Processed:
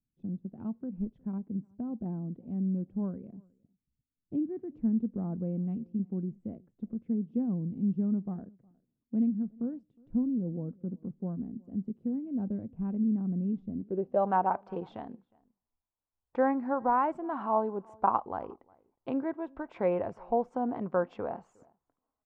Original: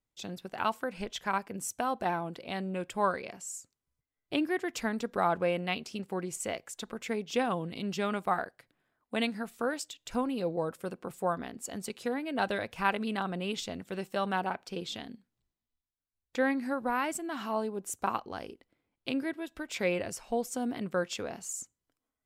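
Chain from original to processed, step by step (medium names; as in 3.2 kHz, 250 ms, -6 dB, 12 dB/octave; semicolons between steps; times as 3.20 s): low-pass sweep 220 Hz -> 940 Hz, 13.72–14.34 s; echo from a far wall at 62 m, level -27 dB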